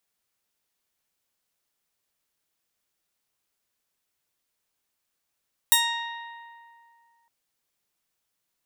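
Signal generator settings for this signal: plucked string A#5, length 1.56 s, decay 2.31 s, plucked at 0.41, bright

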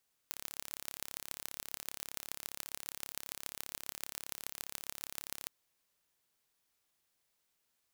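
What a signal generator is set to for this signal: pulse train 34.9 per s, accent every 5, -10.5 dBFS 5.18 s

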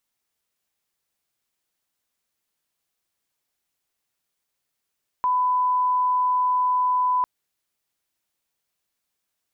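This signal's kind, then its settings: line-up tone -18 dBFS 2.00 s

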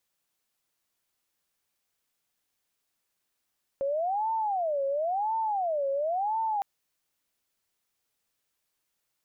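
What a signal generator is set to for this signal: siren wail 547–897 Hz 0.96 per s sine -25.5 dBFS 2.81 s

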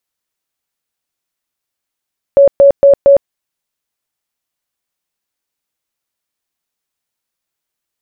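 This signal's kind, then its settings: tone bursts 559 Hz, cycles 60, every 0.23 s, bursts 4, -2 dBFS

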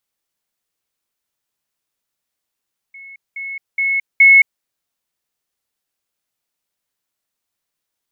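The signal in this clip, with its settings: level ladder 2.19 kHz -34.5 dBFS, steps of 10 dB, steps 4, 0.22 s 0.20 s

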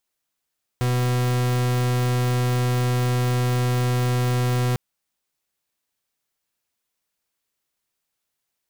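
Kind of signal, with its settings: pulse 124 Hz, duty 42% -21 dBFS 3.95 s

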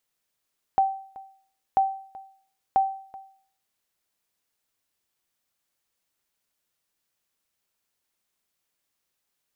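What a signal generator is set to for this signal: sonar ping 775 Hz, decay 0.53 s, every 0.99 s, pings 3, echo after 0.38 s, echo -20.5 dB -13.5 dBFS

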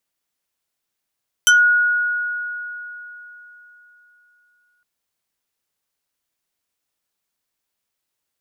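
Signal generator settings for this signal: FM tone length 3.36 s, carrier 1.45 kHz, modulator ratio 3.13, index 2.2, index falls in 0.16 s exponential, decay 3.65 s, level -8 dB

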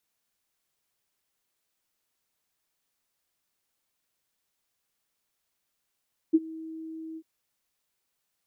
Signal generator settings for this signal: ADSR sine 321 Hz, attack 19 ms, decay 37 ms, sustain -22.5 dB, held 0.84 s, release 55 ms -14 dBFS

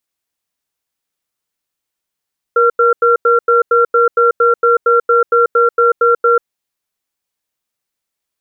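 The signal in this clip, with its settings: cadence 473 Hz, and 1.37 kHz, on 0.14 s, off 0.09 s, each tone -10 dBFS 3.83 s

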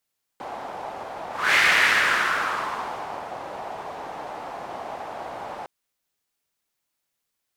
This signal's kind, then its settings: whoosh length 5.26 s, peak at 1.16 s, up 0.27 s, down 1.86 s, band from 770 Hz, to 2 kHz, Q 2.8, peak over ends 17 dB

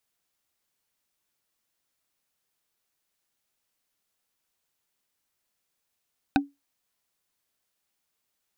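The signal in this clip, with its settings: wood hit bar, lowest mode 282 Hz, decay 0.20 s, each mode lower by 1.5 dB, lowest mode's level -15 dB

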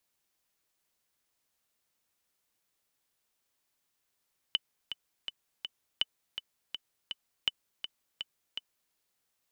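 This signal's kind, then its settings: metronome 164 bpm, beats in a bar 4, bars 3, 3 kHz, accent 9.5 dB -13.5 dBFS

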